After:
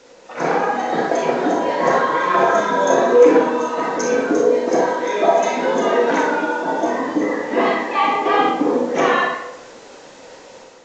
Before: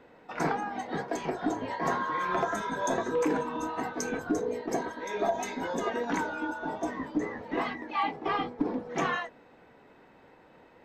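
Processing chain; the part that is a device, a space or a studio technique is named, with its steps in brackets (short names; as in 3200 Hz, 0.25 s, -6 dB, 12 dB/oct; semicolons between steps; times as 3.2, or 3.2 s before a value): 3.41–4.64 notch 760 Hz, Q 12; tape echo 61 ms, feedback 44%, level -4.5 dB, low-pass 4900 Hz; filmed off a television (BPF 210–7100 Hz; bell 520 Hz +10 dB 0.29 oct; reverb RT60 0.75 s, pre-delay 29 ms, DRR 1 dB; white noise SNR 26 dB; AGC gain up to 7 dB; gain +2.5 dB; AAC 32 kbps 16000 Hz)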